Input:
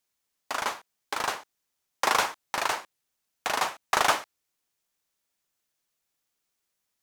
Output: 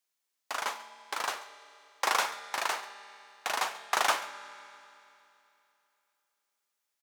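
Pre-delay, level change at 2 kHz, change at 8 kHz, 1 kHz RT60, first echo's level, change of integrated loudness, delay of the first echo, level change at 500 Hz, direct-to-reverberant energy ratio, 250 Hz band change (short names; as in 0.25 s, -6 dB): 5 ms, -3.0 dB, -3.0 dB, 2.9 s, -19.0 dB, -3.5 dB, 0.137 s, -5.0 dB, 11.0 dB, -9.0 dB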